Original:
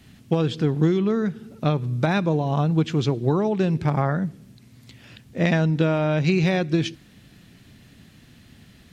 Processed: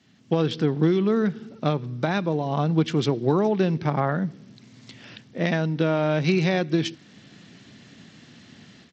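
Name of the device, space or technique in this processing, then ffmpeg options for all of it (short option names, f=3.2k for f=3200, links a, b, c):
Bluetooth headset: -af "highpass=48,highpass=160,bandreject=f=2.5k:w=24,dynaudnorm=f=180:g=3:m=11.5dB,aresample=16000,aresample=44100,volume=-7.5dB" -ar 32000 -c:a sbc -b:a 64k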